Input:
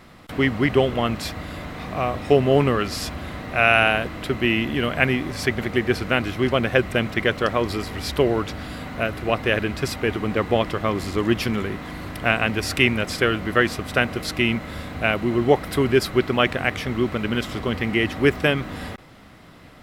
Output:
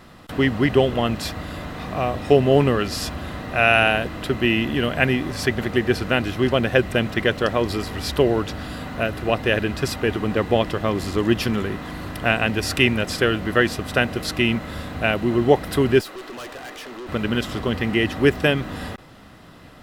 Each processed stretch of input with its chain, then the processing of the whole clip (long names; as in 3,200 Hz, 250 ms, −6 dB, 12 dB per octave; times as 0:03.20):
0:16.01–0:17.09: high-pass filter 300 Hz 24 dB per octave + tube saturation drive 34 dB, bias 0.5
whole clip: notch filter 2,200 Hz, Q 9.2; dynamic equaliser 1,200 Hz, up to −4 dB, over −34 dBFS, Q 2.6; level +1.5 dB